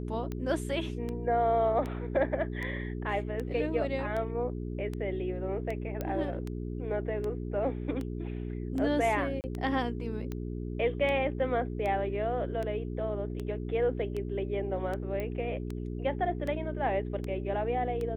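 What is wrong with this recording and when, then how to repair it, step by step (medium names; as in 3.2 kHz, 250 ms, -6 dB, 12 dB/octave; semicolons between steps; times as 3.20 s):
hum 60 Hz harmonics 7 -36 dBFS
tick 78 rpm -24 dBFS
6.01 s: pop -20 dBFS
9.41–9.44 s: dropout 29 ms
15.20 s: pop -23 dBFS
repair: de-click; de-hum 60 Hz, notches 7; interpolate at 9.41 s, 29 ms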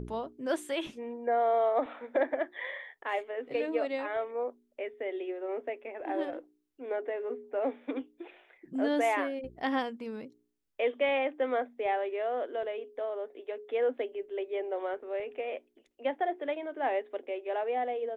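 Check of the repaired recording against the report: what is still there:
nothing left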